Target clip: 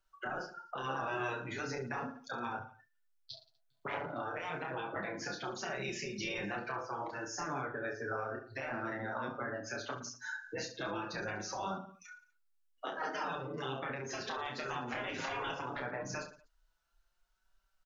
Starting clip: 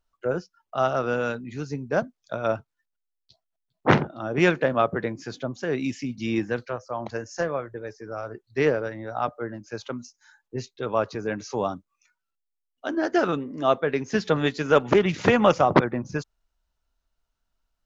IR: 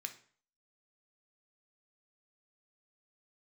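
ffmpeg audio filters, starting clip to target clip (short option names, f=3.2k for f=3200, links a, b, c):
-filter_complex "[0:a]equalizer=f=1.5k:w=4.7:g=6.5,acompressor=threshold=-23dB:ratio=3,afftfilt=real='re*lt(hypot(re,im),0.112)':imag='im*lt(hypot(re,im),0.112)':win_size=1024:overlap=0.75,flanger=delay=5.1:depth=3:regen=-9:speed=0.17:shape=triangular,acrossover=split=180|1000[a][b][c];[a]acompressor=threshold=-52dB:ratio=4[d];[b]acompressor=threshold=-45dB:ratio=4[e];[c]acompressor=threshold=-54dB:ratio=4[f];[d][e][f]amix=inputs=3:normalize=0,alimiter=level_in=17.5dB:limit=-24dB:level=0:latency=1:release=445,volume=-17.5dB,lowshelf=f=390:g=-10,asplit=2[g][h];[h]aecho=0:1:30|67.5|114.4|173|246.2:0.631|0.398|0.251|0.158|0.1[i];[g][i]amix=inputs=2:normalize=0,afftdn=nr=12:nf=-64,volume=14.5dB"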